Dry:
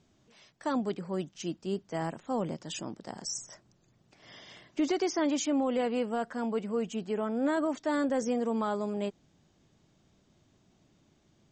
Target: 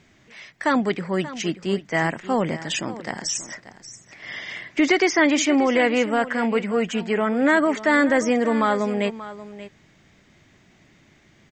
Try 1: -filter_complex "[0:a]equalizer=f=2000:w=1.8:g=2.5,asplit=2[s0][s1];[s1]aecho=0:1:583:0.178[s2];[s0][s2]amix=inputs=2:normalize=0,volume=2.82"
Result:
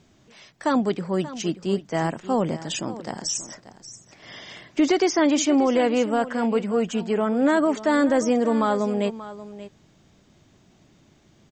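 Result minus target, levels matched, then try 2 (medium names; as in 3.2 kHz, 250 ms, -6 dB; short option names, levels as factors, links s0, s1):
2 kHz band -7.5 dB
-filter_complex "[0:a]equalizer=f=2000:w=1.8:g=14.5,asplit=2[s0][s1];[s1]aecho=0:1:583:0.178[s2];[s0][s2]amix=inputs=2:normalize=0,volume=2.82"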